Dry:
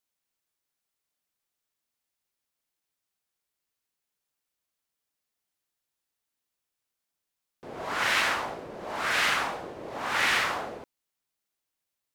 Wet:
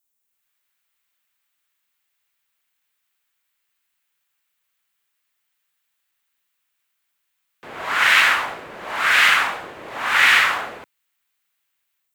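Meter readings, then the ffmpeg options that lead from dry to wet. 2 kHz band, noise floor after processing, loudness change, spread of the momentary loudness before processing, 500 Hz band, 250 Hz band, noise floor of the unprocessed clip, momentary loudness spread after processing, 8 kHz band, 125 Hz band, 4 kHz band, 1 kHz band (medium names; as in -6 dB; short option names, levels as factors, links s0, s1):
+12.0 dB, -75 dBFS, +11.0 dB, 15 LU, +1.5 dB, 0.0 dB, -85 dBFS, 19 LU, +6.5 dB, no reading, +9.5 dB, +8.0 dB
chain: -filter_complex "[0:a]acrossover=split=120|1200|3600[s0][s1][s2][s3];[s2]dynaudnorm=f=250:g=3:m=5.62[s4];[s3]aexciter=amount=3.3:drive=2.2:freq=6700[s5];[s0][s1][s4][s5]amix=inputs=4:normalize=0"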